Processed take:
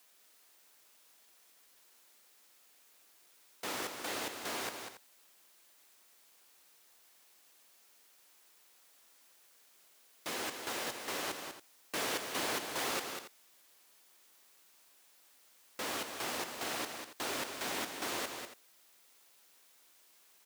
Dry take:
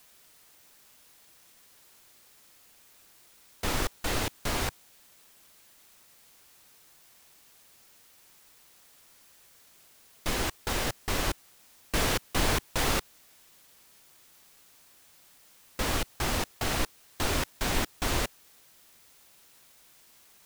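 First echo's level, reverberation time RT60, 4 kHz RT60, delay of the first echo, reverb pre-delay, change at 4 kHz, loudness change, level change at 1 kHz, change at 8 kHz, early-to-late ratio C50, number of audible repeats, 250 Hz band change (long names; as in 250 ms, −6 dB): −7.0 dB, no reverb audible, no reverb audible, 195 ms, no reverb audible, −6.0 dB, −7.0 dB, −6.0 dB, −6.0 dB, no reverb audible, 2, −10.0 dB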